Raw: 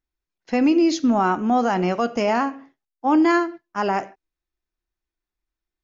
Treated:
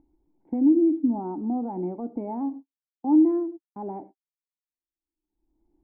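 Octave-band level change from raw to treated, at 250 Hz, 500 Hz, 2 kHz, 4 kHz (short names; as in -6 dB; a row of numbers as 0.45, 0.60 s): -2.0 dB, -7.5 dB, under -35 dB, under -40 dB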